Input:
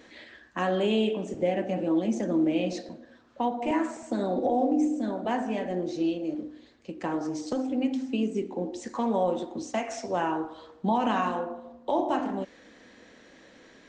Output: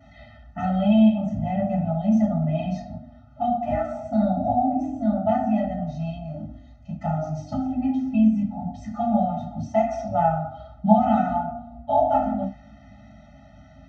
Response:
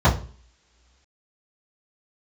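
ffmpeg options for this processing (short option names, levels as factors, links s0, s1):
-filter_complex "[0:a]asettb=1/sr,asplit=3[s0][s1][s2];[s0]atrim=end=6.434[s3];[s1]atrim=start=6.43:end=7.36,asetpts=PTS-STARTPTS,afade=t=in:d=0.004:c=qsin,afade=t=out:st=0.926:d=0.004:c=qsin,equalizer=f=6500:w=5.1:g=8[s4];[s2]atrim=start=7.356[s5];[s3][s4]acrossfade=d=0.004:c1=hsin:c2=qsin[s6];[s6][s5]acrossfade=d=0.004:c1=qsin:c2=hsin[s7];[1:a]atrim=start_sample=2205,atrim=end_sample=6174,asetrate=38808,aresample=44100[s8];[s7][s8]afir=irnorm=-1:irlink=0,afftfilt=real='re*eq(mod(floor(b*sr/1024/300),2),0)':imag='im*eq(mod(floor(b*sr/1024/300),2),0)':win_size=1024:overlap=0.75,volume=0.158"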